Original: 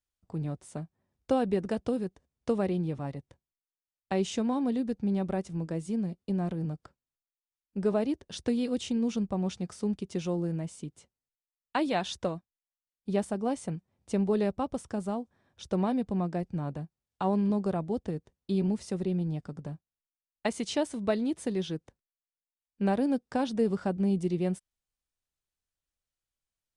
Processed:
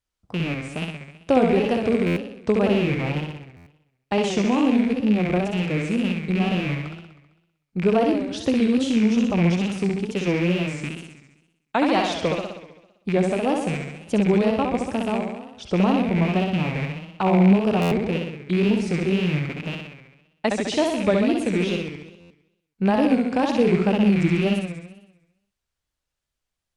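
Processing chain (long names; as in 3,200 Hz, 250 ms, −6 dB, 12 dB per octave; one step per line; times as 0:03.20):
loose part that buzzes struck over −38 dBFS, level −28 dBFS
high-shelf EQ 8,000 Hz −9 dB
flutter between parallel walls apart 11.1 metres, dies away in 1 s
tape wow and flutter 150 cents
buffer that repeats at 0:02.06/0:03.56/0:17.81/0:22.20, samples 512, times 8
level +7 dB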